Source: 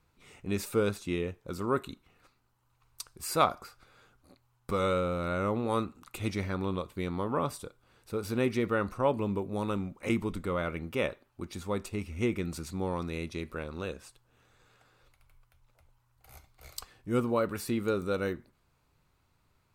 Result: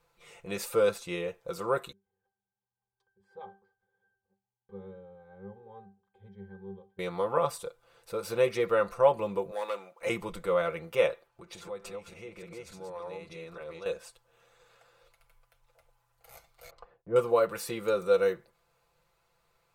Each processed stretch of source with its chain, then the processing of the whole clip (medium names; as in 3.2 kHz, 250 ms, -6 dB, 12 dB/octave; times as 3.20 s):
1.92–6.99 s: treble shelf 5 kHz -8.5 dB + pitch-class resonator G, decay 0.3 s
9.51–10.01 s: median filter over 5 samples + high-pass 540 Hz + transformer saturation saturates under 1.1 kHz
11.27–13.86 s: chunks repeated in reverse 288 ms, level -1.5 dB + treble shelf 8 kHz -8.5 dB + compression 8:1, threshold -39 dBFS
16.70–17.16 s: low-pass 1 kHz + gate with hold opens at -52 dBFS, closes at -58 dBFS
whole clip: resonant low shelf 380 Hz -7 dB, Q 3; comb 5.9 ms, depth 71%